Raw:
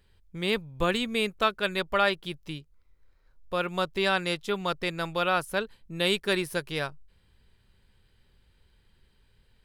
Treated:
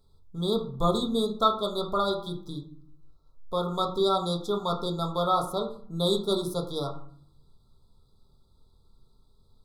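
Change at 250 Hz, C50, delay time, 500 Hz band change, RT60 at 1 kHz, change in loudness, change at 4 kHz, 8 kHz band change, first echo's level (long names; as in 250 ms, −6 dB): +2.5 dB, 9.5 dB, no echo audible, +1.5 dB, 0.55 s, 0.0 dB, −1.5 dB, −1.0 dB, no echo audible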